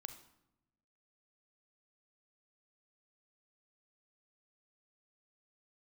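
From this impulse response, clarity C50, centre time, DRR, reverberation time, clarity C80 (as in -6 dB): 10.5 dB, 11 ms, 8.5 dB, 0.90 s, 14.0 dB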